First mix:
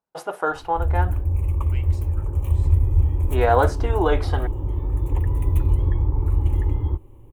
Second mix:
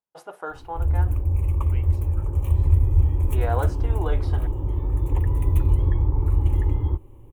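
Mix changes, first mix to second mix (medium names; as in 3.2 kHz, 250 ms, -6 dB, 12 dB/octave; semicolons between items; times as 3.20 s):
first voice -10.0 dB; second voice: add tilt EQ -4 dB/octave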